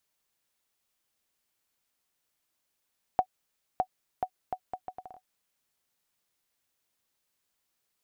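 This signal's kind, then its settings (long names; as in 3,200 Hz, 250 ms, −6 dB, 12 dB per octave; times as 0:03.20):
bouncing ball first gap 0.61 s, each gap 0.7, 744 Hz, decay 72 ms −12.5 dBFS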